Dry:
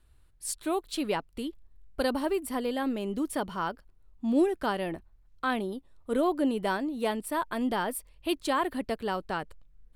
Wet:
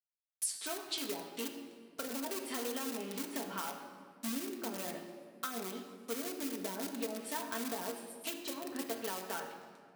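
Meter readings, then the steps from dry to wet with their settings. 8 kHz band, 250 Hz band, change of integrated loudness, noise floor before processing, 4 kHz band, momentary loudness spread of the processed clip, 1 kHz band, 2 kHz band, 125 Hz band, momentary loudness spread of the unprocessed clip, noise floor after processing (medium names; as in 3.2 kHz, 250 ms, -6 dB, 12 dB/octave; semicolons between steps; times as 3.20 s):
+1.0 dB, -11.5 dB, -8.5 dB, -60 dBFS, -3.0 dB, 6 LU, -11.5 dB, -9.0 dB, -12.0 dB, 10 LU, -61 dBFS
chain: send-on-delta sampling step -46.5 dBFS; chord resonator F#2 major, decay 0.21 s; on a send: feedback echo behind a high-pass 137 ms, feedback 35%, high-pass 4.9 kHz, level -18 dB; on the sum: low-pass that closes with the level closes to 340 Hz, closed at -34 dBFS; in parallel at -12 dB: integer overflow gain 38.5 dB; on the sum: high-pass 110 Hz 24 dB/octave; tilt EQ +3.5 dB/octave; compression, threshold -44 dBFS, peak gain reduction 8 dB; treble shelf 3.9 kHz +6 dB; simulated room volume 3700 m³, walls mixed, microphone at 1.6 m; trim +6 dB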